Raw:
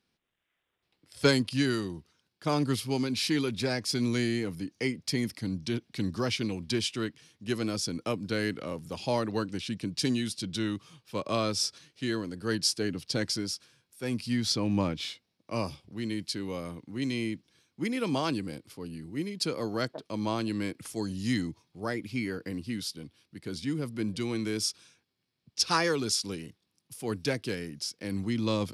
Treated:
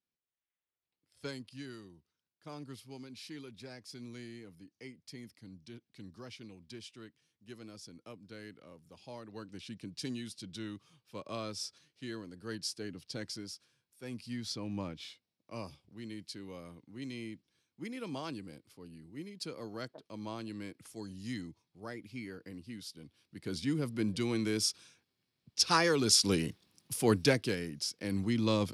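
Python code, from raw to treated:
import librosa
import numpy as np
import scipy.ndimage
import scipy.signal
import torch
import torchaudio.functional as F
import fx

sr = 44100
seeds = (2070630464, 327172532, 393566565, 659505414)

y = fx.gain(x, sr, db=fx.line((9.22, -18.5), (9.62, -11.0), (22.83, -11.0), (23.51, -1.0), (25.91, -1.0), (26.36, 8.0), (26.96, 8.0), (27.56, -1.0)))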